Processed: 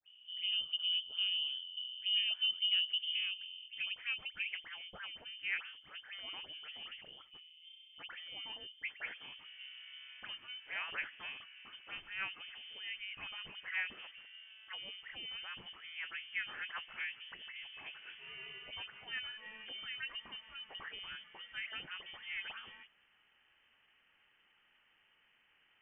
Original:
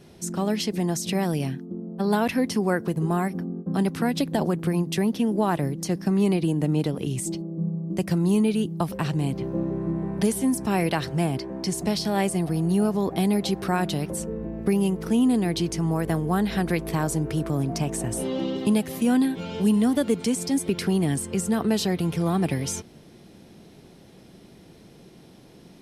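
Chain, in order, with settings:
band-pass filter sweep 360 Hz → 1,400 Hz, 0:02.79–0:04.74
all-pass dispersion lows, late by 61 ms, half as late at 1,400 Hz
voice inversion scrambler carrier 3,300 Hz
level −5 dB

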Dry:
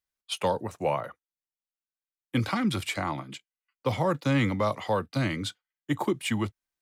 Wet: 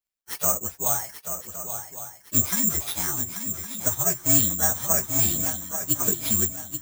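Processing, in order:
partials spread apart or drawn together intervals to 123%
bad sample-rate conversion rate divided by 6×, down none, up zero stuff
on a send: feedback echo with a long and a short gap by turns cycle 1,112 ms, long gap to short 3 to 1, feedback 38%, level −9 dB
0:03.88–0:04.62: on the sum: expander for the loud parts 1.5 to 1, over −27 dBFS
level −1 dB

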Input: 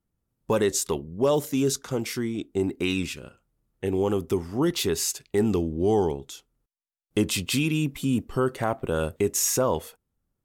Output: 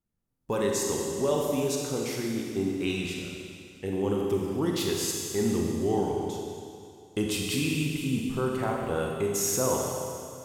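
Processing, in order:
four-comb reverb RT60 2.4 s, combs from 31 ms, DRR −1 dB
level −6 dB

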